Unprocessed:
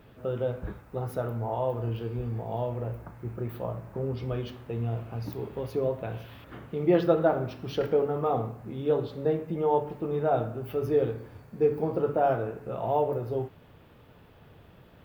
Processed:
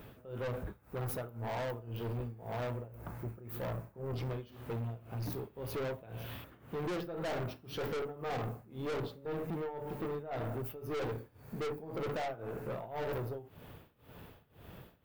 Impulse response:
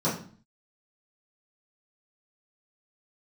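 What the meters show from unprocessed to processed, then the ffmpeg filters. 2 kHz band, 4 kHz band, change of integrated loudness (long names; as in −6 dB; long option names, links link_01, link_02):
−2.0 dB, −1.5 dB, −10.0 dB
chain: -af "tremolo=f=1.9:d=0.93,highshelf=frequency=9000:gain=11.5,aeval=exprs='(tanh(79.4*val(0)+0.25)-tanh(0.25))/79.4':channel_layout=same,volume=3.5dB"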